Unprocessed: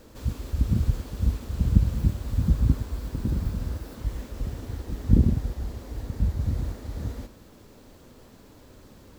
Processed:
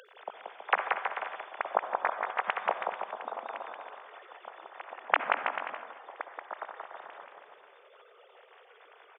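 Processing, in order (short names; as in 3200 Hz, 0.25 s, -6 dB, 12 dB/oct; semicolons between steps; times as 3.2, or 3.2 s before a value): sine-wave speech; bouncing-ball echo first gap 0.18 s, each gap 0.8×, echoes 5; upward compressor, threshold -40 dBFS; HPF 650 Hz 24 dB/oct; on a send at -10.5 dB: reverb RT60 1.2 s, pre-delay 53 ms; on the sum: gain -4 dB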